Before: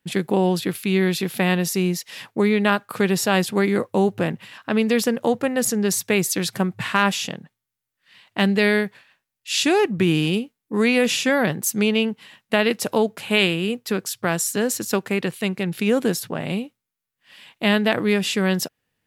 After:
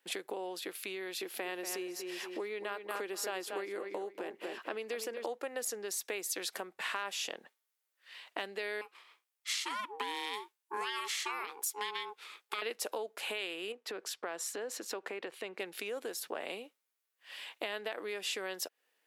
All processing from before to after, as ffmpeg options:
-filter_complex "[0:a]asettb=1/sr,asplit=3[s0][s1][s2];[s0]atrim=end=1.214[s3];[s1]atrim=start=1.21:end=5.26,asetpts=PTS-STARTPTS,afade=t=in:d=0.004:c=qsin,afade=t=out:st=4.046:d=0.004:c=qsin,equalizer=f=340:t=o:w=0.35:g=6.5,bandreject=f=3700:w=21,asplit=2[s4][s5];[s5]adelay=236,lowpass=f=3700:p=1,volume=0.335,asplit=2[s6][s7];[s7]adelay=236,lowpass=f=3700:p=1,volume=0.29,asplit=2[s8][s9];[s9]adelay=236,lowpass=f=3700:p=1,volume=0.29[s10];[s4][s6][s8][s10]amix=inputs=4:normalize=0,atrim=end_sample=178605[s11];[s2]atrim=start=5.256[s12];[s3][s11]acrossfade=d=0.004:c1=hsin:c2=qsin[s13];[s13][s12]acrossfade=d=0.004:c1=qsin:c2=hsin,asettb=1/sr,asplit=3[s14][s15][s16];[s14]atrim=end=8.814[s17];[s15]atrim=start=8.81:end=12.62,asetpts=PTS-STARTPTS,afade=t=in:d=0.004:c=qsin,afade=t=out:st=3.806:d=0.004:c=qsin,highpass=f=540:p=1,equalizer=f=8600:w=5.5:g=2.5,aeval=exprs='val(0)*sin(2*PI*630*n/s)':c=same[s18];[s16]atrim=start=12.616[s19];[s17][s18]acrossfade=d=0.004:c1=hsin:c2=qsin[s20];[s20][s19]acrossfade=d=0.004:c1=qsin:c2=hsin,asettb=1/sr,asplit=3[s21][s22][s23];[s21]atrim=end=13.724[s24];[s22]atrim=start=13.72:end=15.6,asetpts=PTS-STARTPTS,afade=t=in:d=0.004:c=qsin,afade=t=out:st=1.876:d=0.004:c=qsin,aemphasis=mode=reproduction:type=75kf,acompressor=threshold=0.0398:ratio=3:attack=3.2:release=140:knee=1:detection=peak[s25];[s23]atrim=start=15.596[s26];[s24][s25]acrossfade=d=0.004:c1=hsin:c2=qsin[s27];[s27][s26]acrossfade=d=0.004:c1=qsin:c2=hsin,alimiter=limit=0.2:level=0:latency=1:release=391,acompressor=threshold=0.0224:ratio=6,highpass=f=380:w=0.5412,highpass=f=380:w=1.3066"

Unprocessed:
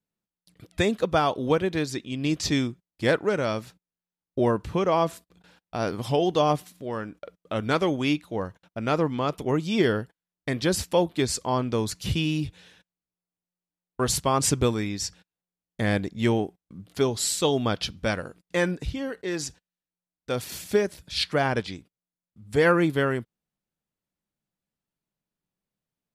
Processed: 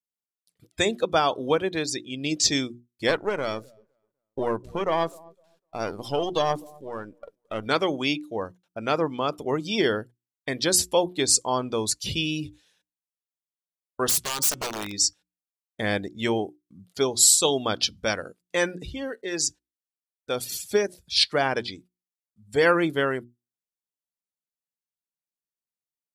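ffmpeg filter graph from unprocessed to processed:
-filter_complex "[0:a]asettb=1/sr,asplit=3[s0][s1][s2];[s0]atrim=end=3.094[s3];[s1]atrim=start=3.09:end=7.66,asetpts=PTS-STARTPTS,afade=t=in:d=0.004:c=qsin,afade=t=out:st=4.566:d=0.004:c=qsin,aeval=exprs='if(lt(val(0),0),0.447*val(0),val(0))':c=same,asplit=2[s4][s5];[s5]adelay=253,lowpass=f=1700:p=1,volume=0.0794,asplit=2[s6][s7];[s7]adelay=253,lowpass=f=1700:p=1,volume=0.39,asplit=2[s8][s9];[s9]adelay=253,lowpass=f=1700:p=1,volume=0.39[s10];[s4][s6][s8][s10]amix=inputs=4:normalize=0,atrim=end_sample=201537[s11];[s2]atrim=start=7.656[s12];[s3][s11]acrossfade=d=0.004:c1=hsin:c2=qsin[s13];[s13][s12]acrossfade=d=0.004:c1=qsin:c2=hsin,asettb=1/sr,asplit=3[s14][s15][s16];[s14]atrim=end=14.094[s17];[s15]atrim=start=14.09:end=14.94,asetpts=PTS-STARTPTS,afade=t=in:d=0.004:c=qsin,afade=t=out:st=0.846:d=0.004:c=qsin,bandreject=f=183.9:t=h:w=4,bandreject=f=367.8:t=h:w=4,bandreject=f=551.7:t=h:w=4,bandreject=f=735.6:t=h:w=4,bandreject=f=919.5:t=h:w=4,bandreject=f=1103.4:t=h:w=4,bandreject=f=1287.3:t=h:w=4,bandreject=f=1471.2:t=h:w=4,bandreject=f=1655.1:t=h:w=4,bandreject=f=1839:t=h:w=4,bandreject=f=2022.9:t=h:w=4,bandreject=f=2206.8:t=h:w=4,bandreject=f=2390.7:t=h:w=4,bandreject=f=2574.6:t=h:w=4,bandreject=f=2758.5:t=h:w=4,bandreject=f=2942.4:t=h:w=4,bandreject=f=3126.3:t=h:w=4,bandreject=f=3310.2:t=h:w=4,bandreject=f=3494.1:t=h:w=4,acompressor=threshold=0.0447:ratio=2.5:attack=3.2:release=140:knee=1:detection=peak,aeval=exprs='(mod(15.8*val(0)+1,2)-1)/15.8':c=same[s18];[s16]atrim=start=14.936[s19];[s17][s18]acrossfade=d=0.004:c1=hsin:c2=qsin[s20];[s20][s19]acrossfade=d=0.004:c1=qsin:c2=hsin,bandreject=f=60:t=h:w=6,bandreject=f=120:t=h:w=6,bandreject=f=180:t=h:w=6,bandreject=f=240:t=h:w=6,bandreject=f=300:t=h:w=6,bandreject=f=360:t=h:w=6,afftdn=nr=16:nf=-40,bass=f=250:g=-8,treble=f=4000:g=11,volume=1.12"

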